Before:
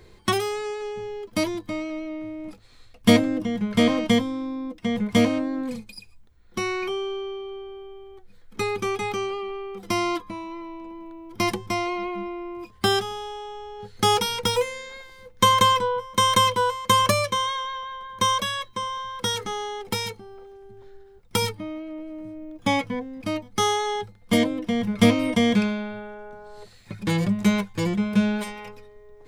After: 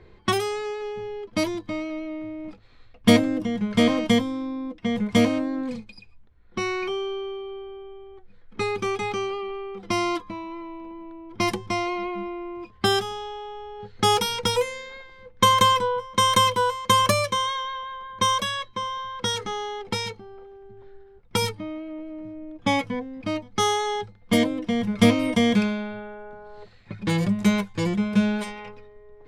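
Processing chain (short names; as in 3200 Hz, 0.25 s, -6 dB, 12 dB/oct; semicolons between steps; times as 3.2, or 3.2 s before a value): low-pass opened by the level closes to 2600 Hz, open at -19 dBFS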